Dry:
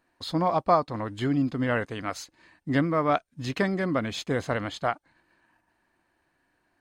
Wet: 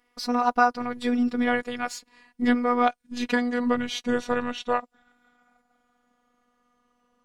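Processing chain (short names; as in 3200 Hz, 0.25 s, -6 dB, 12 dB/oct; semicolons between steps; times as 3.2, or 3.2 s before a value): speed glide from 120% -> 68%; robotiser 244 Hz; gain +4.5 dB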